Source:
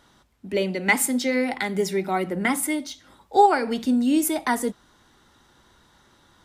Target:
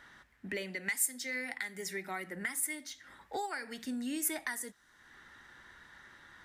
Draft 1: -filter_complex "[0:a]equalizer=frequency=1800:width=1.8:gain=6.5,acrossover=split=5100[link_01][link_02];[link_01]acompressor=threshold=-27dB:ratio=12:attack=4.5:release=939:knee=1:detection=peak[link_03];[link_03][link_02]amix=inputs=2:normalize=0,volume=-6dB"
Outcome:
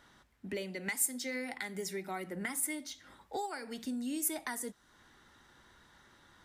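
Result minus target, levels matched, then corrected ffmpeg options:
2,000 Hz band −3.5 dB
-filter_complex "[0:a]equalizer=frequency=1800:width=1.8:gain=18,acrossover=split=5100[link_01][link_02];[link_01]acompressor=threshold=-27dB:ratio=12:attack=4.5:release=939:knee=1:detection=peak[link_03];[link_03][link_02]amix=inputs=2:normalize=0,volume=-6dB"

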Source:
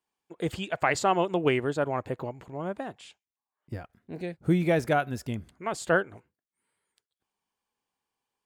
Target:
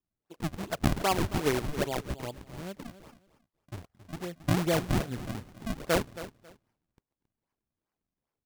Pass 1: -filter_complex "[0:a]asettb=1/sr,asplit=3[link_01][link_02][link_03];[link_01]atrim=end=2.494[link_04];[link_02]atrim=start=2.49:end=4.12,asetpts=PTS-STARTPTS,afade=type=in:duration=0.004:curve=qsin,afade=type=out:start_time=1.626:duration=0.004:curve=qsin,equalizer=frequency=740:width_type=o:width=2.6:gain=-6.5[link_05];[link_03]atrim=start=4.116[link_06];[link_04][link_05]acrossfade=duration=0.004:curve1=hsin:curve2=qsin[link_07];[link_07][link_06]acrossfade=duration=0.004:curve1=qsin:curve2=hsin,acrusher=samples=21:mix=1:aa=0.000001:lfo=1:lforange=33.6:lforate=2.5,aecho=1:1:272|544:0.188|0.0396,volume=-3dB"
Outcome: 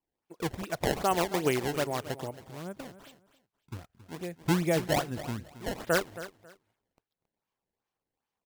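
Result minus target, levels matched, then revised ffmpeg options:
sample-and-hold swept by an LFO: distortion −8 dB
-filter_complex "[0:a]asettb=1/sr,asplit=3[link_01][link_02][link_03];[link_01]atrim=end=2.494[link_04];[link_02]atrim=start=2.49:end=4.12,asetpts=PTS-STARTPTS,afade=type=in:duration=0.004:curve=qsin,afade=type=out:start_time=1.626:duration=0.004:curve=qsin,equalizer=frequency=740:width_type=o:width=2.6:gain=-6.5[link_05];[link_03]atrim=start=4.116[link_06];[link_04][link_05]acrossfade=duration=0.004:curve1=hsin:curve2=qsin[link_07];[link_07][link_06]acrossfade=duration=0.004:curve1=qsin:curve2=hsin,acrusher=samples=56:mix=1:aa=0.000001:lfo=1:lforange=89.6:lforate=2.5,aecho=1:1:272|544:0.188|0.0396,volume=-3dB"

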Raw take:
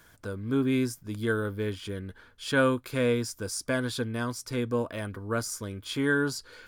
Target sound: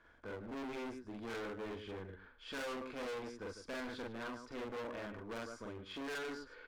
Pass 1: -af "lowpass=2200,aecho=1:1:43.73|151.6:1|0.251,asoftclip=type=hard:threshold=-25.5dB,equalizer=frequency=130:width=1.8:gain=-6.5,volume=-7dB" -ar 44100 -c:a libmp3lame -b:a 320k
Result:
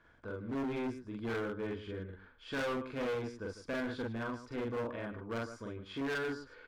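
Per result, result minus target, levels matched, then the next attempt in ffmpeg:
125 Hz band +4.5 dB; hard clipping: distortion −4 dB
-af "lowpass=2200,aecho=1:1:43.73|151.6:1|0.251,asoftclip=type=hard:threshold=-25.5dB,equalizer=frequency=130:width=1.8:gain=-17,volume=-7dB" -ar 44100 -c:a libmp3lame -b:a 320k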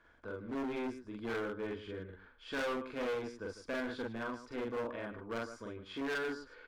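hard clipping: distortion −4 dB
-af "lowpass=2200,aecho=1:1:43.73|151.6:1|0.251,asoftclip=type=hard:threshold=-32.5dB,equalizer=frequency=130:width=1.8:gain=-17,volume=-7dB" -ar 44100 -c:a libmp3lame -b:a 320k

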